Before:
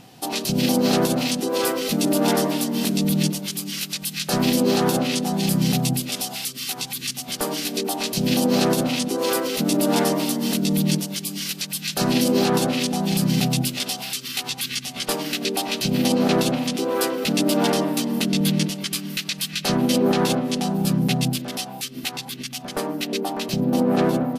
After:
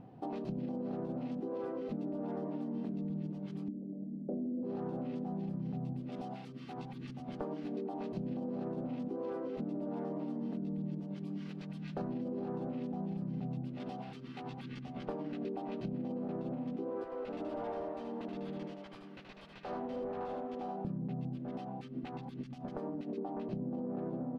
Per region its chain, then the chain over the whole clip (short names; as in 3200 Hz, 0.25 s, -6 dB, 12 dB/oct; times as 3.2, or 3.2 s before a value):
3.68–4.63 elliptic low-pass 620 Hz, stop band 60 dB + resonant low shelf 160 Hz -13.5 dB, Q 3
17.04–20.85 HPF 610 Hz + overloaded stage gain 25 dB + echo 77 ms -5 dB
22.23–23.18 tone controls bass +1 dB, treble +9 dB + compressor 3:1, threshold -27 dBFS
whole clip: Bessel low-pass 640 Hz, order 2; limiter -16.5 dBFS; compressor 6:1, threshold -32 dBFS; gain -4 dB